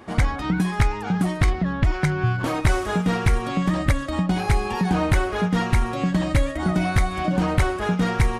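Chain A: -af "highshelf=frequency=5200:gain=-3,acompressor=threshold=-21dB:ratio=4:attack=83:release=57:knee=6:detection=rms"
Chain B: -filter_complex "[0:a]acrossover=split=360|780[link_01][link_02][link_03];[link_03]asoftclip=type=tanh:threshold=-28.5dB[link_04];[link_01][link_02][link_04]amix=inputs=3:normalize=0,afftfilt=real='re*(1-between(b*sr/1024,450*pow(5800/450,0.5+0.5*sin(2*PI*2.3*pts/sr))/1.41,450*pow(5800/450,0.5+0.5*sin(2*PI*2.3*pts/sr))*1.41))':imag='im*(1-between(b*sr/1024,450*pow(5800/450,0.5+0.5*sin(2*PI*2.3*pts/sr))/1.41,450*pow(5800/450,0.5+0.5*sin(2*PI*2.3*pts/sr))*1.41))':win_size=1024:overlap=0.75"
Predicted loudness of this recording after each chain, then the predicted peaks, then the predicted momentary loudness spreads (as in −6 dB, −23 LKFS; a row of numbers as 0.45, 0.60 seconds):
−24.5, −23.5 LKFS; −8.5, −8.0 dBFS; 2, 2 LU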